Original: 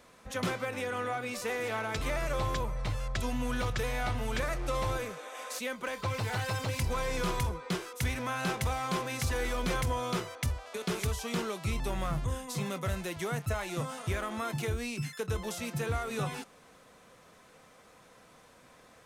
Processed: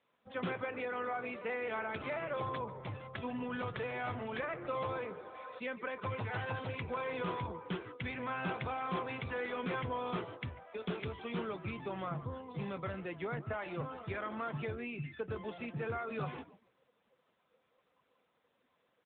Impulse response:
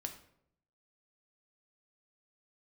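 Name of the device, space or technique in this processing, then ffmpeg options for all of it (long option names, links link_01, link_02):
mobile call with aggressive noise cancelling: -filter_complex "[0:a]asettb=1/sr,asplit=3[link_01][link_02][link_03];[link_01]atrim=end=5.174[link_04];[link_02]atrim=start=5.17:end=6.55,asetpts=PTS-STARTPTS,afade=type=in:duration=0.004:curve=qsin,afade=type=out:start_time=1.376:duration=0.004:curve=qsin,equalizer=frequency=67:width_type=o:width=2.3:gain=3.5[link_05];[link_03]atrim=start=6.546[link_06];[link_04][link_05]acrossfade=duration=0.004:curve1=hsin:curve2=qsin[link_07];[link_07][link_06]acrossfade=duration=0.004:curve1=qsin:curve2=hsin,asplit=5[link_08][link_09][link_10][link_11][link_12];[link_09]adelay=144,afreqshift=-69,volume=-13dB[link_13];[link_10]adelay=288,afreqshift=-138,volume=-20.1dB[link_14];[link_11]adelay=432,afreqshift=-207,volume=-27.3dB[link_15];[link_12]adelay=576,afreqshift=-276,volume=-34.4dB[link_16];[link_08][link_13][link_14][link_15][link_16]amix=inputs=5:normalize=0,highpass=frequency=140:poles=1,afftdn=noise_reduction=15:noise_floor=-44,volume=-3dB" -ar 8000 -c:a libopencore_amrnb -b:a 10200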